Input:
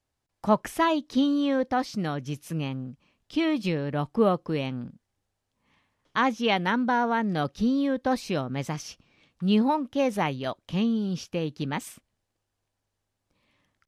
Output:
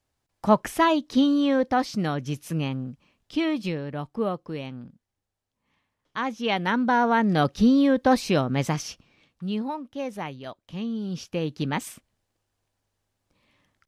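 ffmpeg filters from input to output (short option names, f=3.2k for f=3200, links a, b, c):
-af "volume=24dB,afade=t=out:st=2.88:d=1.18:silence=0.398107,afade=t=in:st=6.25:d=1.18:silence=0.281838,afade=t=out:st=8.69:d=0.83:silence=0.223872,afade=t=in:st=10.79:d=0.82:silence=0.316228"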